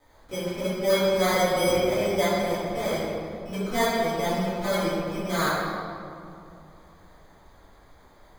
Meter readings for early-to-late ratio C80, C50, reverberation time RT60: -1.0 dB, -3.0 dB, 2.6 s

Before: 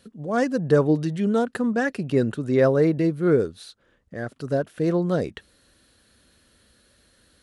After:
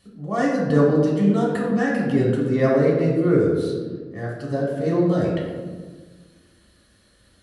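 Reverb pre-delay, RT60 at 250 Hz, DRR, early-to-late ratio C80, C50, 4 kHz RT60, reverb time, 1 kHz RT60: 3 ms, 1.9 s, -4.5 dB, 4.0 dB, 1.5 dB, 0.80 s, 1.5 s, 1.3 s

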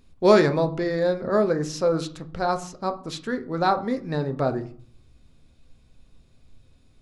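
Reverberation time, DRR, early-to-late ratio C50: 0.55 s, 8.0 dB, 16.0 dB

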